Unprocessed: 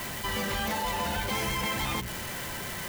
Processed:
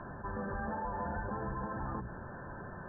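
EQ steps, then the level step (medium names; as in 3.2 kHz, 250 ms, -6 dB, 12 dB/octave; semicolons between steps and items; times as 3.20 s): brick-wall FIR low-pass 1.8 kHz; distance through air 400 m; -4.5 dB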